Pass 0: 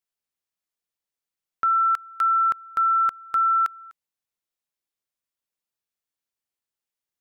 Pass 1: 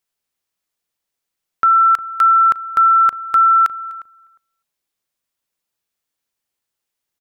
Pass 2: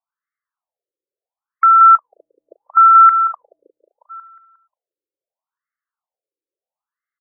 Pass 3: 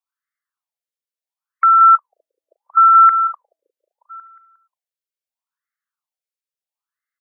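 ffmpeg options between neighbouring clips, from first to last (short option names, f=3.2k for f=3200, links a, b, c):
-filter_complex "[0:a]asplit=2[a][b];[b]adelay=356,lowpass=f=860:p=1,volume=-14.5dB,asplit=2[c][d];[d]adelay=356,lowpass=f=860:p=1,volume=0.15[e];[a][c][e]amix=inputs=3:normalize=0,volume=8.5dB"
-filter_complex "[0:a]asplit=2[a][b];[b]adelay=179,lowpass=f=1.7k:p=1,volume=-7dB,asplit=2[c][d];[d]adelay=179,lowpass=f=1.7k:p=1,volume=0.49,asplit=2[e][f];[f]adelay=179,lowpass=f=1.7k:p=1,volume=0.49,asplit=2[g][h];[h]adelay=179,lowpass=f=1.7k:p=1,volume=0.49,asplit=2[i][j];[j]adelay=179,lowpass=f=1.7k:p=1,volume=0.49,asplit=2[k][l];[l]adelay=179,lowpass=f=1.7k:p=1,volume=0.49[m];[a][c][e][g][i][k][m]amix=inputs=7:normalize=0,afftfilt=real='re*between(b*sr/1024,390*pow(1600/390,0.5+0.5*sin(2*PI*0.74*pts/sr))/1.41,390*pow(1600/390,0.5+0.5*sin(2*PI*0.74*pts/sr))*1.41)':imag='im*between(b*sr/1024,390*pow(1600/390,0.5+0.5*sin(2*PI*0.74*pts/sr))/1.41,390*pow(1600/390,0.5+0.5*sin(2*PI*0.74*pts/sr))*1.41)':win_size=1024:overlap=0.75,volume=2.5dB"
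-af "highpass=1.4k,volume=2dB"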